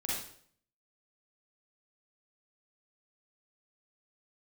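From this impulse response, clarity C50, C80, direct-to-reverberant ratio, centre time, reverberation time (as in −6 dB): −2.0 dB, 4.0 dB, −6.5 dB, 65 ms, 0.60 s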